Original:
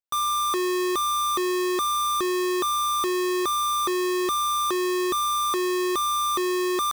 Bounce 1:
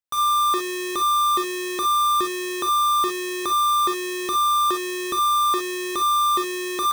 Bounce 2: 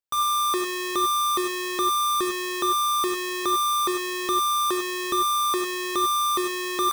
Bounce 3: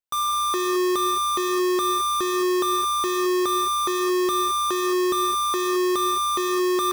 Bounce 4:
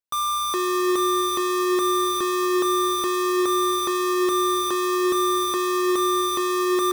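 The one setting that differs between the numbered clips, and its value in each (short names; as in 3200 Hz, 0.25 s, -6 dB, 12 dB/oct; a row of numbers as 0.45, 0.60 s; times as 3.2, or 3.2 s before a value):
non-linear reverb, gate: 80, 120, 240, 470 ms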